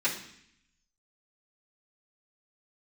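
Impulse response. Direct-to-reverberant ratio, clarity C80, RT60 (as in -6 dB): -11.5 dB, 11.5 dB, 0.65 s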